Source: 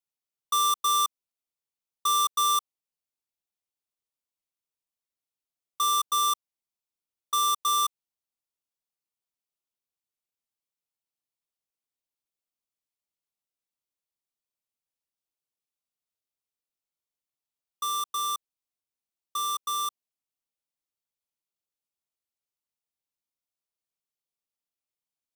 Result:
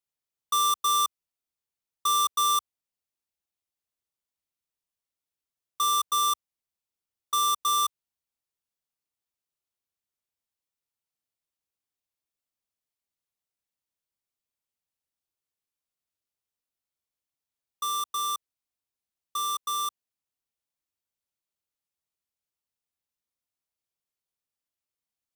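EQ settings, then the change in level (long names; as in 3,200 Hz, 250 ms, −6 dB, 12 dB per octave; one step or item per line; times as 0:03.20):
parametric band 72 Hz +6 dB 1.4 octaves
0.0 dB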